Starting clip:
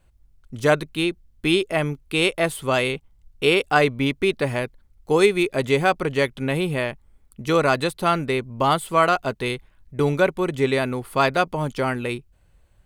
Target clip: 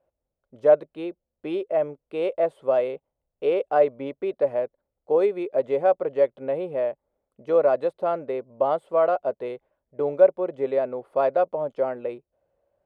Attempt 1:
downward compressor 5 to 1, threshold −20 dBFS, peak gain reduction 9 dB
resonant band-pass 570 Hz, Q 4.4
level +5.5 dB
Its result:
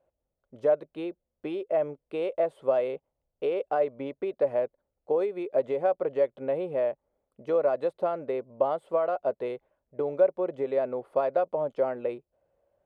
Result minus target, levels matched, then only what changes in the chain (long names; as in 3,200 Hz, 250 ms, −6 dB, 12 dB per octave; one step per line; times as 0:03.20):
downward compressor: peak gain reduction +9 dB
remove: downward compressor 5 to 1, threshold −20 dBFS, peak gain reduction 9 dB